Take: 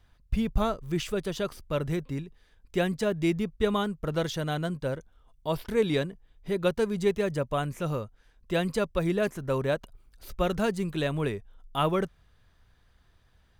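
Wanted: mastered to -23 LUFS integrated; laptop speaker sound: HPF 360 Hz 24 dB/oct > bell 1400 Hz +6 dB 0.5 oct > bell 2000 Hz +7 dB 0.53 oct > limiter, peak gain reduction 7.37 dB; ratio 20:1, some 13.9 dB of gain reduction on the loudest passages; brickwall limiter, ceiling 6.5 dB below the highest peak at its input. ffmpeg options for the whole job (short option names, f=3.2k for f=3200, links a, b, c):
-af "acompressor=threshold=-33dB:ratio=20,alimiter=level_in=6dB:limit=-24dB:level=0:latency=1,volume=-6dB,highpass=f=360:w=0.5412,highpass=f=360:w=1.3066,equalizer=f=1.4k:t=o:w=0.5:g=6,equalizer=f=2k:t=o:w=0.53:g=7,volume=22dB,alimiter=limit=-11dB:level=0:latency=1"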